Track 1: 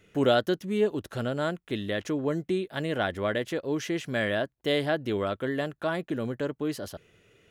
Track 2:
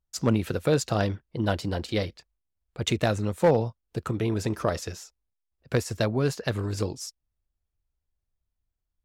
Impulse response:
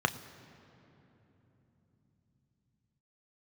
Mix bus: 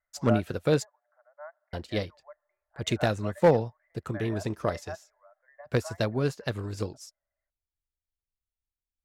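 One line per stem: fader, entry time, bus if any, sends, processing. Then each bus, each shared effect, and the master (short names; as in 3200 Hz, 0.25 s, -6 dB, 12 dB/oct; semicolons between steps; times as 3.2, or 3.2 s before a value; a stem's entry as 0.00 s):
-5.5 dB, 0.00 s, send -20 dB, Chebyshev band-pass 580–2100 Hz, order 5; reverb removal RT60 1.5 s; chopper 0.73 Hz, depth 60%, duty 70%
+1.0 dB, 0.00 s, muted 0.85–1.73, no send, dry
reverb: on, RT60 3.5 s, pre-delay 3 ms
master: upward expander 1.5:1, over -43 dBFS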